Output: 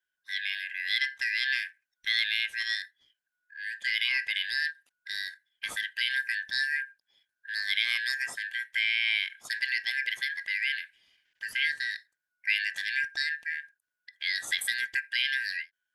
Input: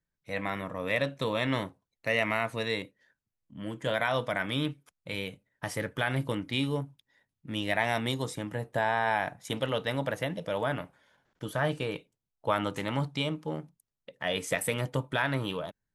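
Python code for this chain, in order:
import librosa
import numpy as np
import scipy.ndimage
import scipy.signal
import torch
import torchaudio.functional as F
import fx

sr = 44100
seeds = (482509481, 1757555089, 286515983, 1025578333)

y = fx.band_shuffle(x, sr, order='4123')
y = fx.low_shelf(y, sr, hz=150.0, db=8.0, at=(3.87, 4.66))
y = fx.end_taper(y, sr, db_per_s=430.0)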